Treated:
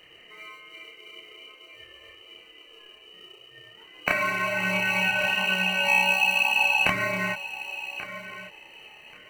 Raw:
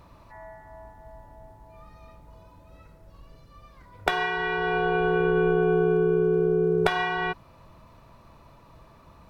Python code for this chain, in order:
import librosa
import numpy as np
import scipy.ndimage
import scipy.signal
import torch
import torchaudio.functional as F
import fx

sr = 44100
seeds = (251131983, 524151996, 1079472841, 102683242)

p1 = fx.spec_gate(x, sr, threshold_db=-30, keep='strong')
p2 = fx.curve_eq(p1, sr, hz=(200.0, 660.0, 2100.0), db=(0, -9, 6), at=(5.08, 5.85))
p3 = fx.freq_invert(p2, sr, carrier_hz=3000)
p4 = scipy.signal.sosfilt(scipy.signal.butter(2, 140.0, 'highpass', fs=sr, output='sos'), p3)
p5 = fx.peak_eq(p4, sr, hz=800.0, db=6.5, octaves=2.1)
p6 = fx.echo_feedback(p5, sr, ms=1134, feedback_pct=20, wet_db=-13)
p7 = fx.sample_hold(p6, sr, seeds[0], rate_hz=1700.0, jitter_pct=0)
p8 = p6 + (p7 * 10.0 ** (-8.0 / 20.0))
y = fx.chorus_voices(p8, sr, voices=2, hz=0.42, base_ms=30, depth_ms=3.4, mix_pct=50)